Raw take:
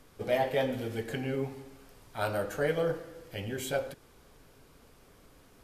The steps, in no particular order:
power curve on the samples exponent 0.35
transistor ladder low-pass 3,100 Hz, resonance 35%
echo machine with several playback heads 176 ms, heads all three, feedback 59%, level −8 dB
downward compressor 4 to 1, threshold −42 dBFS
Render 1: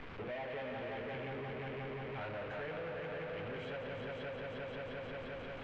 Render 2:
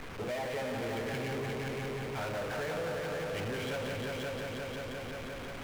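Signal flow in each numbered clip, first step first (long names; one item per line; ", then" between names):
echo machine with several playback heads, then downward compressor, then power curve on the samples, then transistor ladder low-pass
transistor ladder low-pass, then downward compressor, then echo machine with several playback heads, then power curve on the samples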